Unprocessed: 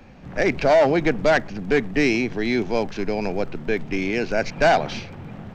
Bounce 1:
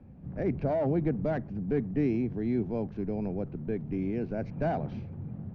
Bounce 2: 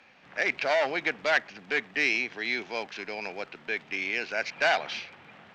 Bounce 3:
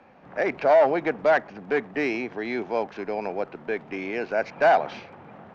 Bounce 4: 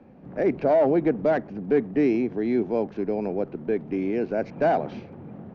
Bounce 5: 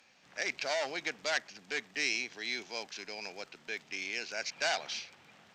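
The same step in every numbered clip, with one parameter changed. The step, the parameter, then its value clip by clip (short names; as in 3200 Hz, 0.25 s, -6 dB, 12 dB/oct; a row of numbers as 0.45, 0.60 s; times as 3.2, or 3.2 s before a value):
band-pass, frequency: 110, 2600, 900, 330, 6600 Hz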